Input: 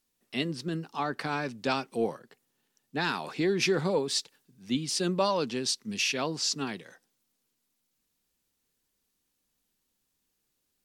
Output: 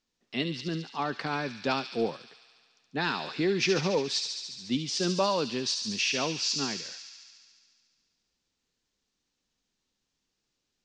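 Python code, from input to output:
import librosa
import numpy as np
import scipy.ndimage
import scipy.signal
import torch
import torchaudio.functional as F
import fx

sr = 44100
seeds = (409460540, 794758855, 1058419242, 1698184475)

y = scipy.signal.sosfilt(scipy.signal.cheby2(4, 40, 11000.0, 'lowpass', fs=sr, output='sos'), x)
y = fx.echo_wet_highpass(y, sr, ms=71, feedback_pct=78, hz=3200.0, wet_db=-4.0)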